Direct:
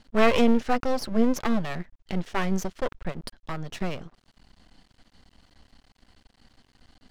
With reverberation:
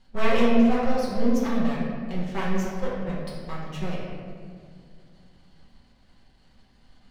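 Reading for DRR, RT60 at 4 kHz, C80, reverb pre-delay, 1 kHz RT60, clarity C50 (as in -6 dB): -7.5 dB, 1.2 s, 1.5 dB, 5 ms, 1.8 s, -0.5 dB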